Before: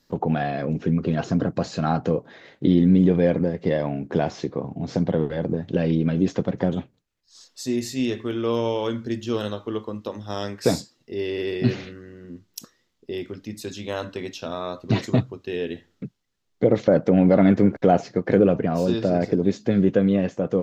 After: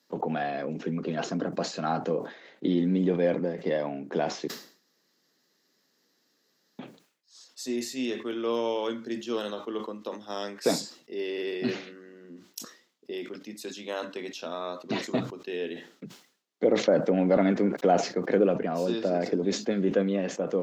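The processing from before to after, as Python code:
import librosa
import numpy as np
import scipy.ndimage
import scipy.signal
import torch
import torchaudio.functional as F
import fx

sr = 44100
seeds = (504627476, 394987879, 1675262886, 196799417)

y = fx.edit(x, sr, fx.room_tone_fill(start_s=4.48, length_s=2.31), tone=tone)
y = scipy.signal.sosfilt(scipy.signal.bessel(8, 280.0, 'highpass', norm='mag', fs=sr, output='sos'), y)
y = fx.sustainer(y, sr, db_per_s=120.0)
y = F.gain(torch.from_numpy(y), -3.5).numpy()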